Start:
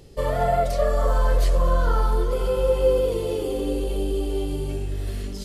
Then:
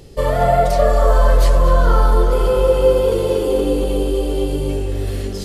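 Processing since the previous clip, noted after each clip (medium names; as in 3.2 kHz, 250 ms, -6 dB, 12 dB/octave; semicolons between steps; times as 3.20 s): tape echo 236 ms, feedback 75%, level -6.5 dB, low-pass 2.4 kHz; trim +6.5 dB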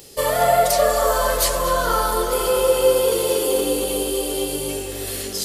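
RIAA curve recording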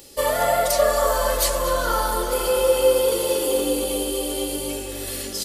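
comb 3.5 ms, depth 40%; trim -2.5 dB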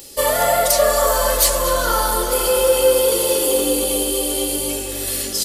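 treble shelf 4.2 kHz +6 dB; in parallel at -7.5 dB: hard clipper -15 dBFS, distortion -15 dB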